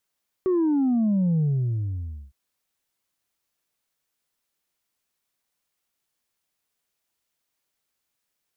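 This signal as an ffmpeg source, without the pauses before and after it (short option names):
-f lavfi -i "aevalsrc='0.112*clip((1.86-t)/0.93,0,1)*tanh(1.19*sin(2*PI*380*1.86/log(65/380)*(exp(log(65/380)*t/1.86)-1)))/tanh(1.19)':d=1.86:s=44100"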